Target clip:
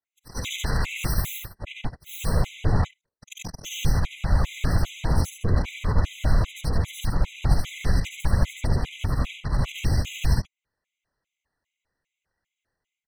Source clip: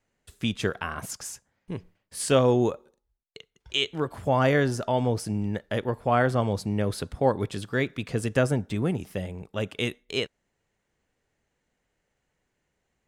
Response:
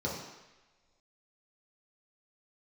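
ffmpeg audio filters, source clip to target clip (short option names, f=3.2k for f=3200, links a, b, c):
-filter_complex "[0:a]afftfilt=real='re':imag='-im':win_size=8192:overlap=0.75,asplit=2[a][b];[b]highpass=f=720:p=1,volume=28dB,asoftclip=type=tanh:threshold=-12.5dB[c];[a][c]amix=inputs=2:normalize=0,lowpass=f=5k:p=1,volume=-6dB,highpass=130,aeval=exprs='0.224*(cos(1*acos(clip(val(0)/0.224,-1,1)))-cos(1*PI/2))+0.112*(cos(2*acos(clip(val(0)/0.224,-1,1)))-cos(2*PI/2))+0.0794*(cos(3*acos(clip(val(0)/0.224,-1,1)))-cos(3*PI/2))+0.00708*(cos(4*acos(clip(val(0)/0.224,-1,1)))-cos(4*PI/2))+0.0316*(cos(6*acos(clip(val(0)/0.224,-1,1)))-cos(6*PI/2))':c=same,aecho=1:1:76:0.668,areverse,acompressor=threshold=-24dB:ratio=16,areverse,asubboost=boost=3:cutoff=180,dynaudnorm=f=120:g=5:m=14dB,afftfilt=real='hypot(re,im)*cos(2*PI*random(0))':imag='hypot(re,im)*sin(2*PI*random(1))':win_size=512:overlap=0.75,afftfilt=real='re*gt(sin(2*PI*2.5*pts/sr)*(1-2*mod(floor(b*sr/1024/2000),2)),0)':imag='im*gt(sin(2*PI*2.5*pts/sr)*(1-2*mod(floor(b*sr/1024/2000),2)),0)':win_size=1024:overlap=0.75,volume=-2.5dB"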